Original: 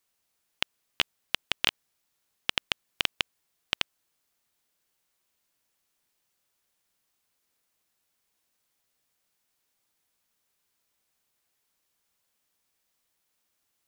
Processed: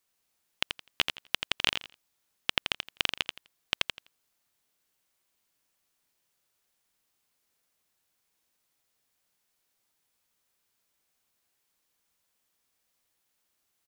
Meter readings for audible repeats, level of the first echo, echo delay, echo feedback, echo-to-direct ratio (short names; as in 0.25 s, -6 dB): 3, -6.5 dB, 84 ms, 20%, -6.5 dB